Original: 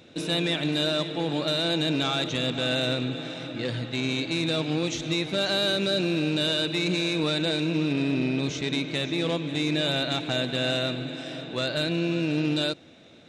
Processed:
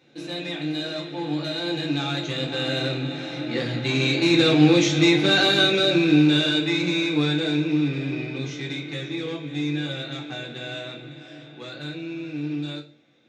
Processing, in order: Doppler pass-by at 4.85 s, 8 m/s, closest 7.3 m; reverberation RT60 0.40 s, pre-delay 3 ms, DRR -1 dB; trim +1 dB

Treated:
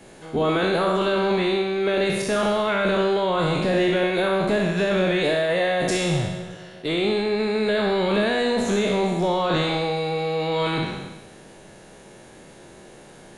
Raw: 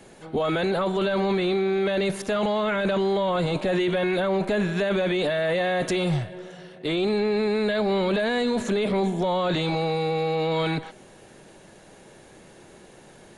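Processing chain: spectral sustain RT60 1.22 s; flutter echo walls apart 11 m, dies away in 0.41 s

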